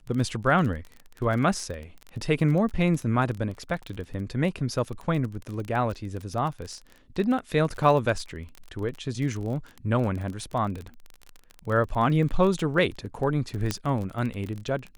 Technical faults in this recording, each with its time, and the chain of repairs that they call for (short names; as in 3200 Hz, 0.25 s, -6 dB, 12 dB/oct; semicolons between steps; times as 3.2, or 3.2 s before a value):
crackle 27/s -31 dBFS
13.71 pop -11 dBFS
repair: de-click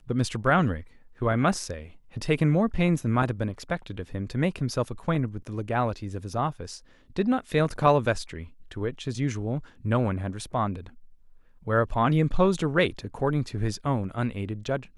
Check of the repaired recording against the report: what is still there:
13.71 pop